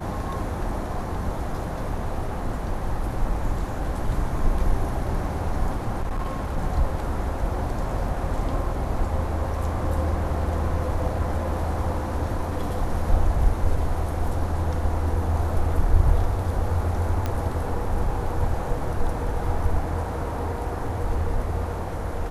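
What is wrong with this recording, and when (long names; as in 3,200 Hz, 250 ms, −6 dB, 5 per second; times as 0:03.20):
0:06.00–0:06.58: clipping −22.5 dBFS
0:17.26: click −13 dBFS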